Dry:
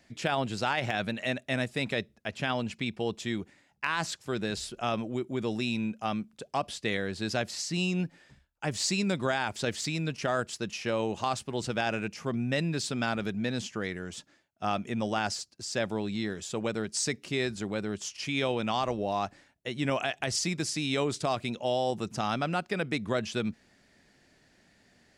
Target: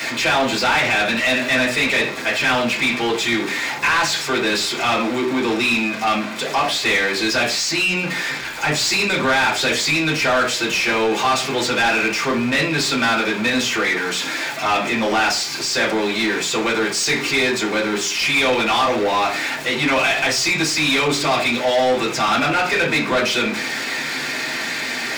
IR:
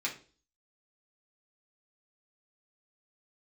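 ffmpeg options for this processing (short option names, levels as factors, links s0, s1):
-filter_complex "[0:a]aeval=exprs='val(0)+0.5*0.0178*sgn(val(0))':c=same[s0];[1:a]atrim=start_sample=2205[s1];[s0][s1]afir=irnorm=-1:irlink=0,asplit=2[s2][s3];[s3]highpass=f=720:p=1,volume=11.2,asoftclip=type=tanh:threshold=0.299[s4];[s2][s4]amix=inputs=2:normalize=0,lowpass=f=4200:p=1,volume=0.501,volume=1.19"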